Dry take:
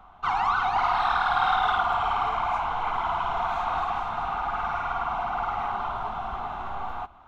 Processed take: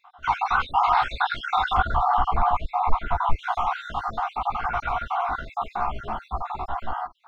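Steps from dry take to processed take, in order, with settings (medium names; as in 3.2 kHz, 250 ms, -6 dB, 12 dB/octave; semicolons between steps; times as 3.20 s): random holes in the spectrogram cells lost 58%; chorus voices 6, 0.3 Hz, delay 16 ms, depth 2.2 ms; 1.77–3.39 s: tilt EQ -2.5 dB/octave; trim +7.5 dB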